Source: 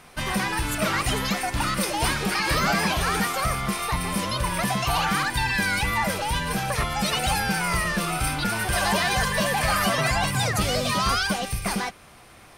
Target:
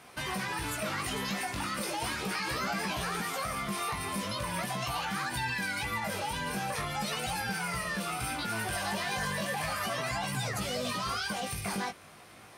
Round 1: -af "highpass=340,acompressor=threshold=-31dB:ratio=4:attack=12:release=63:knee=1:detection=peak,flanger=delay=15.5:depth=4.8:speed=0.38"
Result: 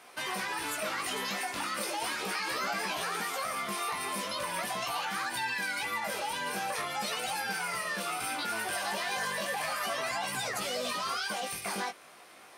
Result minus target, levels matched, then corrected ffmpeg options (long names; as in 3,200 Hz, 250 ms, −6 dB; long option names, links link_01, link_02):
125 Hz band −12.5 dB
-af "highpass=93,acompressor=threshold=-31dB:ratio=4:attack=12:release=63:knee=1:detection=peak,flanger=delay=15.5:depth=4.8:speed=0.38"